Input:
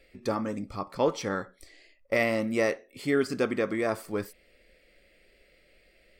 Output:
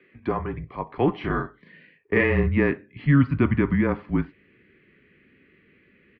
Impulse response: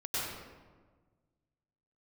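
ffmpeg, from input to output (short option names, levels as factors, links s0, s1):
-filter_complex "[0:a]highpass=f=290:t=q:w=0.5412,highpass=f=290:t=q:w=1.307,lowpass=f=3000:t=q:w=0.5176,lowpass=f=3000:t=q:w=0.7071,lowpass=f=3000:t=q:w=1.932,afreqshift=-140,asubboost=boost=5:cutoff=210,asplit=3[s0][s1][s2];[s0]afade=t=out:st=1.2:d=0.02[s3];[s1]asplit=2[s4][s5];[s5]adelay=37,volume=0.708[s6];[s4][s6]amix=inputs=2:normalize=0,afade=t=in:st=1.2:d=0.02,afade=t=out:st=2.48:d=0.02[s7];[s2]afade=t=in:st=2.48:d=0.02[s8];[s3][s7][s8]amix=inputs=3:normalize=0,volume=1.68"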